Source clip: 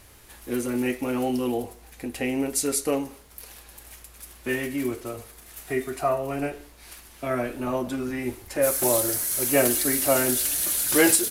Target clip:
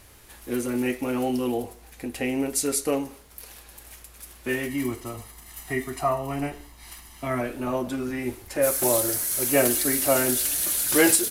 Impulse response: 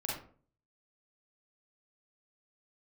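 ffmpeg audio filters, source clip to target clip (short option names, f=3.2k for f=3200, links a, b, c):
-filter_complex "[0:a]asettb=1/sr,asplit=3[a][b][c];[a]atrim=end=4.684[d];[b]atrim=start=4.68:end=7.41,asetpts=PTS-STARTPTS,afade=t=in:d=0.004:c=qsin,afade=t=out:st=2.726:d=0.004:c=qsin,aecho=1:1:1:0.56,atrim=end_sample=120393[e];[c]atrim=start=7.406[f];[d][e]acrossfade=d=0.004:c1=hsin:c2=qsin[g];[g][f]acrossfade=d=0.004:c1=qsin:c2=hsin"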